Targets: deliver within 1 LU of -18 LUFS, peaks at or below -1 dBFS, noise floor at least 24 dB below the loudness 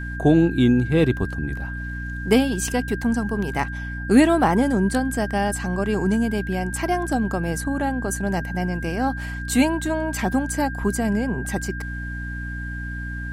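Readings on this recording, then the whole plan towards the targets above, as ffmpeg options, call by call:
hum 60 Hz; harmonics up to 300 Hz; hum level -28 dBFS; steady tone 1600 Hz; tone level -33 dBFS; loudness -22.5 LUFS; peak -4.0 dBFS; loudness target -18.0 LUFS
-> -af "bandreject=f=60:t=h:w=4,bandreject=f=120:t=h:w=4,bandreject=f=180:t=h:w=4,bandreject=f=240:t=h:w=4,bandreject=f=300:t=h:w=4"
-af "bandreject=f=1.6k:w=30"
-af "volume=4.5dB,alimiter=limit=-1dB:level=0:latency=1"

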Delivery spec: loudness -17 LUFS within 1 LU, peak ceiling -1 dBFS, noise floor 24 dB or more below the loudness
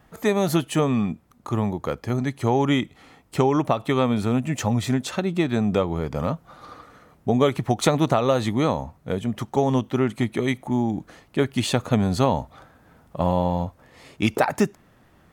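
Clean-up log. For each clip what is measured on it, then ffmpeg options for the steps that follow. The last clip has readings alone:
loudness -23.5 LUFS; peak -5.5 dBFS; loudness target -17.0 LUFS
-> -af "volume=6.5dB,alimiter=limit=-1dB:level=0:latency=1"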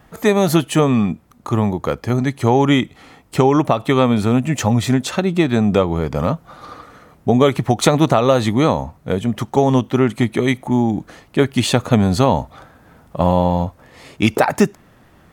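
loudness -17.5 LUFS; peak -1.0 dBFS; noise floor -51 dBFS

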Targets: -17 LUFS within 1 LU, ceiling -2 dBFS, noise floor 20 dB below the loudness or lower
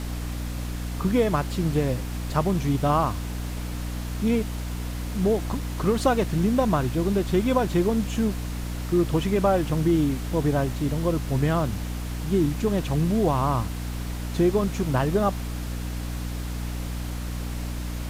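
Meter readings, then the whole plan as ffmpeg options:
hum 60 Hz; harmonics up to 300 Hz; hum level -28 dBFS; noise floor -31 dBFS; noise floor target -46 dBFS; loudness -25.5 LUFS; peak -8.0 dBFS; loudness target -17.0 LUFS
-> -af "bandreject=f=60:t=h:w=4,bandreject=f=120:t=h:w=4,bandreject=f=180:t=h:w=4,bandreject=f=240:t=h:w=4,bandreject=f=300:t=h:w=4"
-af "afftdn=nr=15:nf=-31"
-af "volume=8.5dB,alimiter=limit=-2dB:level=0:latency=1"

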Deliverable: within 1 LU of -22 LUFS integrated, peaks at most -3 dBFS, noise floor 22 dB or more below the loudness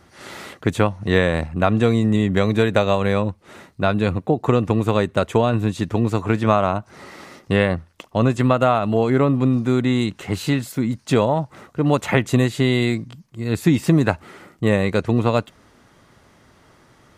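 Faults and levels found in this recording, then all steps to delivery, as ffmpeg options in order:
loudness -20.0 LUFS; peak -1.5 dBFS; loudness target -22.0 LUFS
-> -af "volume=-2dB"

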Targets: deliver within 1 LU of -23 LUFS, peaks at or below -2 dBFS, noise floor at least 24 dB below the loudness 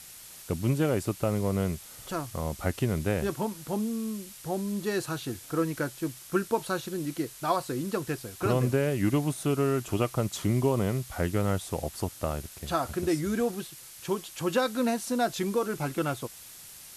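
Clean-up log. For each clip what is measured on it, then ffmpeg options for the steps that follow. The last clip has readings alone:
noise floor -47 dBFS; noise floor target -54 dBFS; loudness -30.0 LUFS; peak -13.5 dBFS; loudness target -23.0 LUFS
-> -af "afftdn=nr=7:nf=-47"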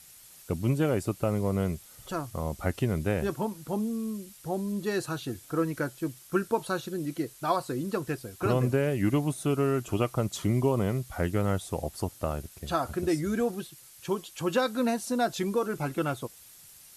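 noise floor -52 dBFS; noise floor target -54 dBFS
-> -af "afftdn=nr=6:nf=-52"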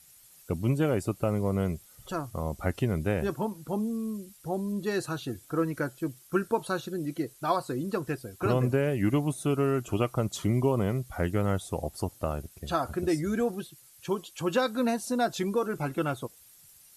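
noise floor -56 dBFS; loudness -30.0 LUFS; peak -13.5 dBFS; loudness target -23.0 LUFS
-> -af "volume=7dB"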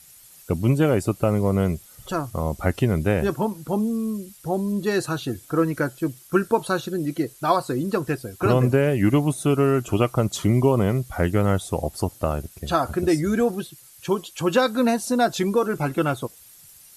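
loudness -23.0 LUFS; peak -6.5 dBFS; noise floor -49 dBFS

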